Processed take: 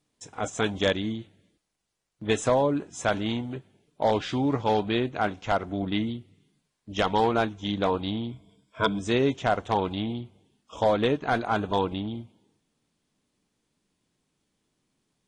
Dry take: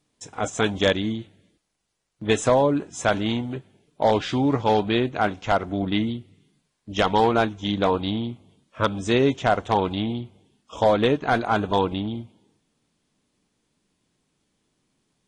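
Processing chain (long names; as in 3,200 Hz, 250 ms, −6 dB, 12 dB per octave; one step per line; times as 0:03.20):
0:08.31–0:08.99: EQ curve with evenly spaced ripples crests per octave 1.7, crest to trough 13 dB
level −4 dB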